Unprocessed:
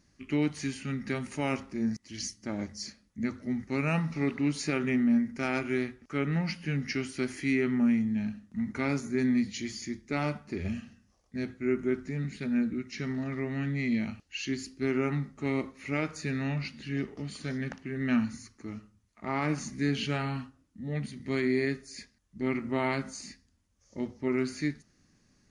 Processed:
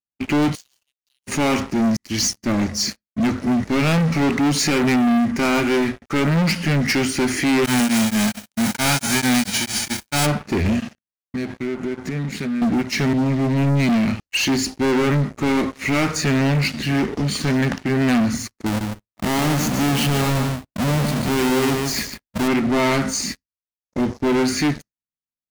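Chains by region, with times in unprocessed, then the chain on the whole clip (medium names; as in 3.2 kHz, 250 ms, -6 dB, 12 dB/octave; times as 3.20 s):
0.55–1.27 s: Chebyshev high-pass 2.7 kHz, order 10 + compression 12:1, threshold -52 dBFS
7.64–10.25 s: formants flattened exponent 0.3 + comb 1.3 ms, depth 45% + tremolo of two beating tones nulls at 4.5 Hz
10.79–12.62 s: high-pass 100 Hz + compression, threshold -42 dBFS
13.13–13.89 s: bass shelf 370 Hz +3.5 dB + static phaser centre 300 Hz, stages 8 + three bands expanded up and down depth 70%
18.66–22.48 s: square wave that keeps the level + compression 2:1, threshold -41 dBFS + delay 148 ms -6.5 dB
whole clip: waveshaping leveller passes 5; expander -29 dBFS; trim +1.5 dB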